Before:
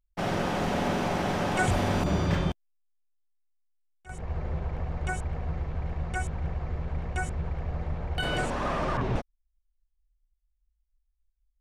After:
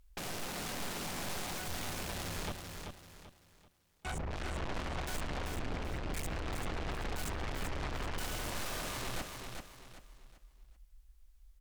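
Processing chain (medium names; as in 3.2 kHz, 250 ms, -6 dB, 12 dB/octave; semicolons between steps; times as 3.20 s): 2.47–4.31 s: compression 6:1, threshold -43 dBFS, peak gain reduction 16 dB; 5.51–6.27 s: spectral selection erased 310–1600 Hz; valve stage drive 43 dB, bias 0.45; sine folder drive 9 dB, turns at -39 dBFS; feedback delay 387 ms, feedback 34%, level -5.5 dB; trim +4 dB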